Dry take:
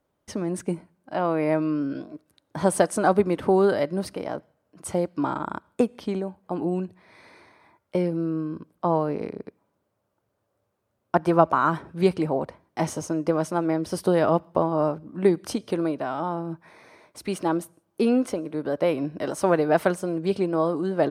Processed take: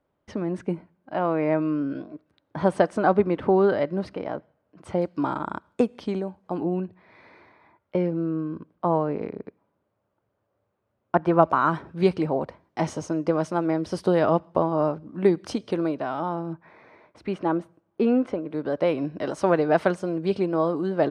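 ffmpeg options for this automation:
ffmpeg -i in.wav -af "asetnsamples=nb_out_samples=441:pad=0,asendcmd='5.02 lowpass f 6600;6.63 lowpass f 2900;11.43 lowpass f 5600;16.53 lowpass f 2400;18.51 lowpass f 5300',lowpass=3100" out.wav

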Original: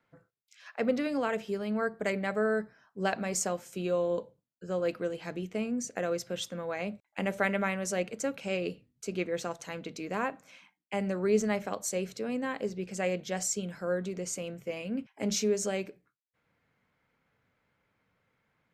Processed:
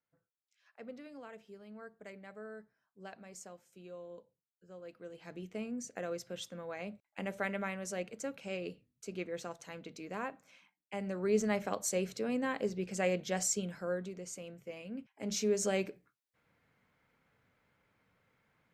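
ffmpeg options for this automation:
ffmpeg -i in.wav -af "volume=9dB,afade=type=in:start_time=4.95:duration=0.53:silence=0.266073,afade=type=in:start_time=11.01:duration=0.72:silence=0.473151,afade=type=out:start_time=13.51:duration=0.67:silence=0.398107,afade=type=in:start_time=15.21:duration=0.62:silence=0.316228" out.wav

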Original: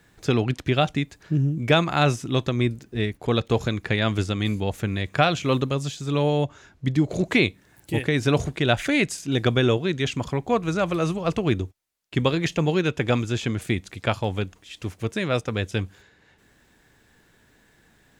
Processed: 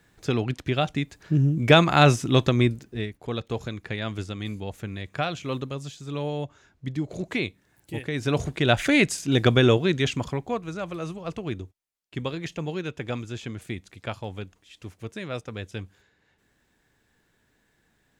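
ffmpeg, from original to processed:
ffmpeg -i in.wav -af "volume=13.5dB,afade=type=in:start_time=0.86:duration=0.96:silence=0.446684,afade=type=out:start_time=2.49:duration=0.61:silence=0.266073,afade=type=in:start_time=8.07:duration=0.85:silence=0.316228,afade=type=out:start_time=9.92:duration=0.71:silence=0.281838" out.wav

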